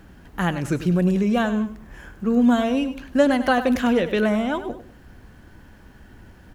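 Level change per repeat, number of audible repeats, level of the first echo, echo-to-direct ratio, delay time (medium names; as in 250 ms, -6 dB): -9.5 dB, 2, -12.5 dB, -12.0 dB, 99 ms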